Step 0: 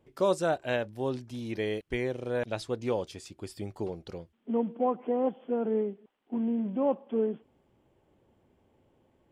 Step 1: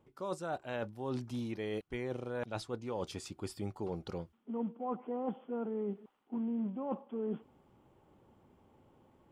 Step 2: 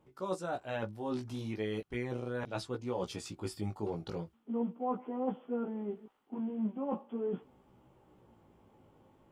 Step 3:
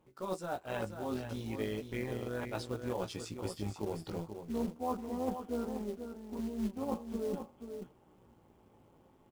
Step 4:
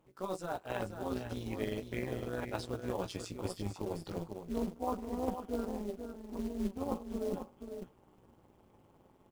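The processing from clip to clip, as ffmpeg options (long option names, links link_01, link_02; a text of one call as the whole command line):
ffmpeg -i in.wav -af "superequalizer=9b=1.78:10b=2,areverse,acompressor=threshold=-36dB:ratio=8,areverse,equalizer=frequency=180:width=0.8:gain=3.5" out.wav
ffmpeg -i in.wav -af "flanger=delay=15.5:depth=3.5:speed=0.39,volume=4.5dB" out.wav
ffmpeg -i in.wav -af "tremolo=f=170:d=0.519,acrusher=bits=5:mode=log:mix=0:aa=0.000001,aecho=1:1:484:0.398,volume=1dB" out.wav
ffmpeg -i in.wav -af "tremolo=f=190:d=0.71,volume=3dB" out.wav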